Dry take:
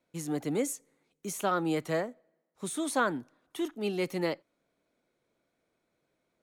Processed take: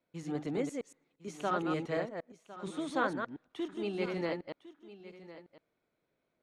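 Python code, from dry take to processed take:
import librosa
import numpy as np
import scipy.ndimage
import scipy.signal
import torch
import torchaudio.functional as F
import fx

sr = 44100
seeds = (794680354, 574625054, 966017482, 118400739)

y = fx.reverse_delay(x, sr, ms=116, wet_db=-4)
y = scipy.signal.sosfilt(scipy.signal.butter(2, 4200.0, 'lowpass', fs=sr, output='sos'), y)
y = y + 10.0 ** (-16.0 / 20.0) * np.pad(y, (int(1056 * sr / 1000.0), 0))[:len(y)]
y = F.gain(torch.from_numpy(y), -4.5).numpy()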